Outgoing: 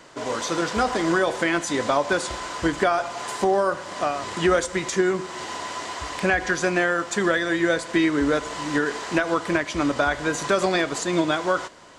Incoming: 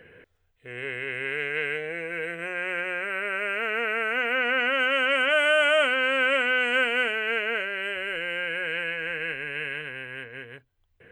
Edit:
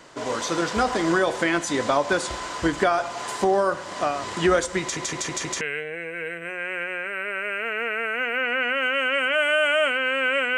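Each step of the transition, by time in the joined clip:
outgoing
4.81 stutter in place 0.16 s, 5 plays
5.61 switch to incoming from 1.58 s

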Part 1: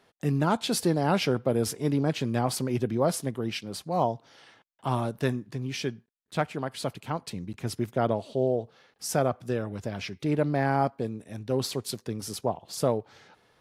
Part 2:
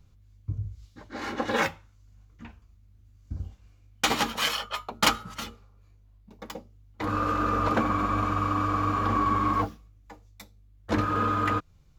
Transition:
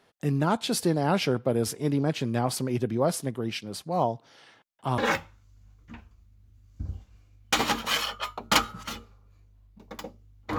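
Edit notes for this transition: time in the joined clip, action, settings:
part 1
4.98 switch to part 2 from 1.49 s

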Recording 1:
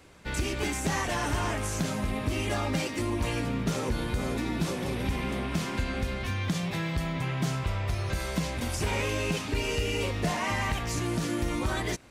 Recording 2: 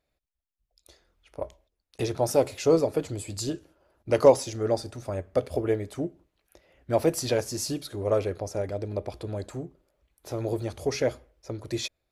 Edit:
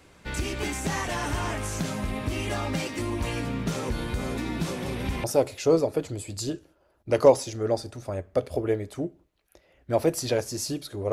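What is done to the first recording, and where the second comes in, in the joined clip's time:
recording 1
5.24 switch to recording 2 from 2.24 s

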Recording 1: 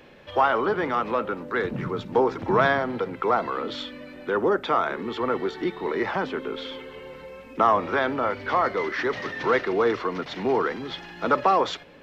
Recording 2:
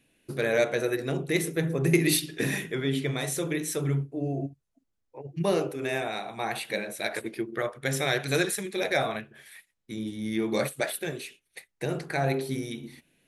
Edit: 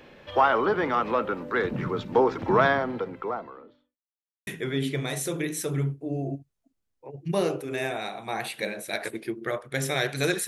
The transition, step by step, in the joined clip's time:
recording 1
2.48–3.98 studio fade out
3.98–4.47 mute
4.47 switch to recording 2 from 2.58 s

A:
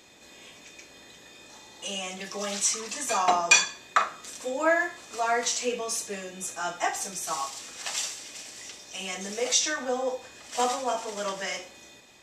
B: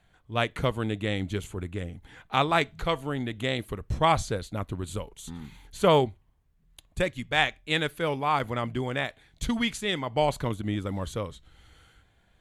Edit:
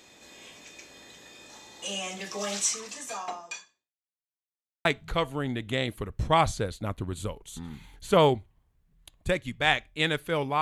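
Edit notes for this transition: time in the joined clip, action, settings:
A
2.55–3.95 fade out quadratic
3.95–4.85 mute
4.85 switch to B from 2.56 s

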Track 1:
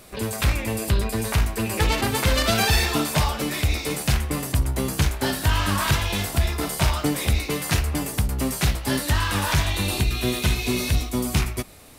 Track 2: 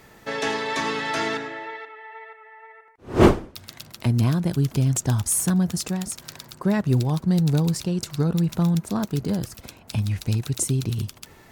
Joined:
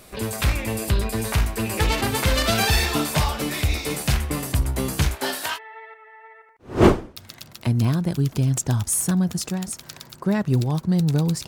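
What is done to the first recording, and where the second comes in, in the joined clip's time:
track 1
5.14–5.59 HPF 270 Hz -> 700 Hz
5.56 switch to track 2 from 1.95 s, crossfade 0.06 s

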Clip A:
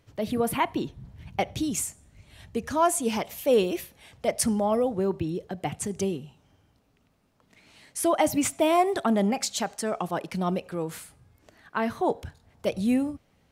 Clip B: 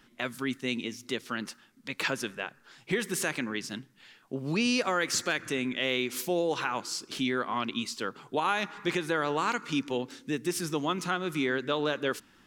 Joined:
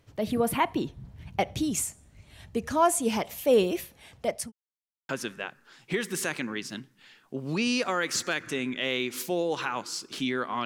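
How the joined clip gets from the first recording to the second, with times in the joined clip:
clip A
4.07–4.52 fade out equal-power
4.52–5.09 mute
5.09 switch to clip B from 2.08 s

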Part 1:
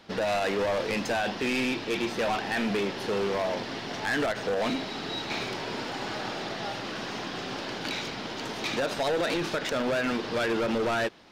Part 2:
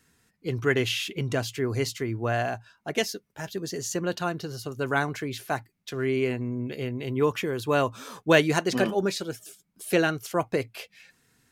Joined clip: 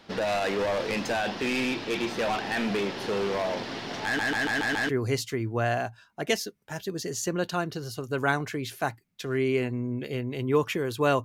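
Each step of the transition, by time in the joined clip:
part 1
4.05 stutter in place 0.14 s, 6 plays
4.89 switch to part 2 from 1.57 s

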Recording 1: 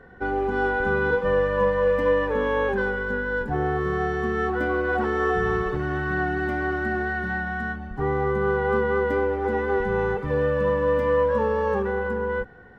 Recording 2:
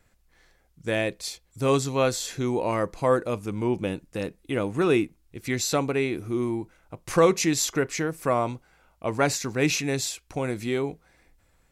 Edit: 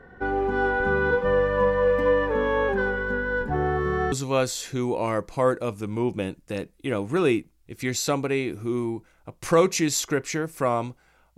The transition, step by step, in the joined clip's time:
recording 1
4.12 switch to recording 2 from 1.77 s

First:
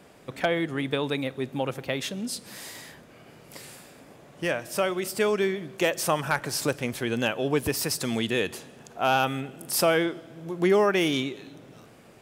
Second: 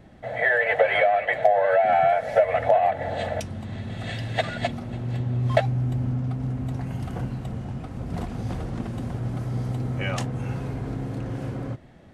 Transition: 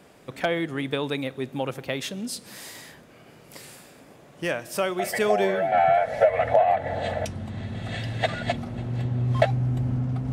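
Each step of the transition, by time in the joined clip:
first
4.99 add second from 1.14 s 0.73 s -6 dB
5.72 switch to second from 1.87 s

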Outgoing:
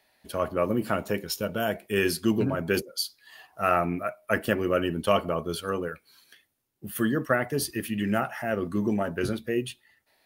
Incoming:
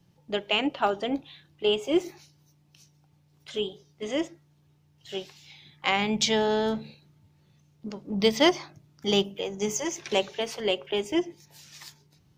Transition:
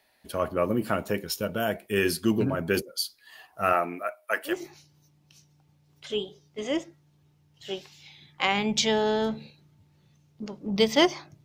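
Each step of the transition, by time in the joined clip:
outgoing
3.72–4.62 HPF 280 Hz -> 950 Hz
4.53 switch to incoming from 1.97 s, crossfade 0.18 s

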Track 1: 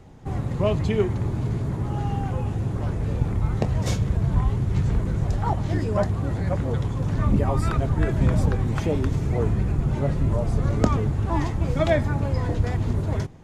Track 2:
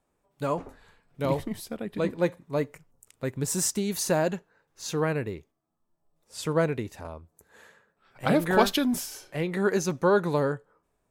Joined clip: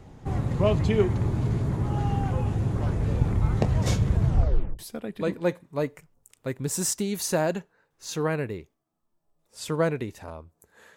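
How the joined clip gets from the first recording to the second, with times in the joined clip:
track 1
4.25 tape stop 0.54 s
4.79 switch to track 2 from 1.56 s

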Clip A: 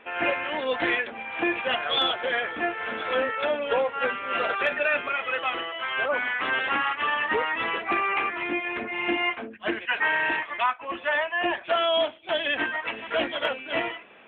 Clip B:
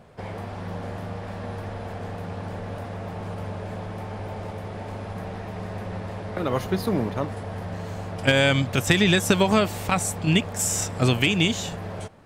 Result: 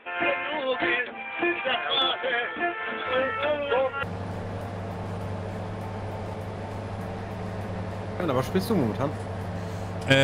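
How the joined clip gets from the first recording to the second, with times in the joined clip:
clip A
3.06 add clip B from 1.23 s 0.97 s -11 dB
4.03 switch to clip B from 2.2 s

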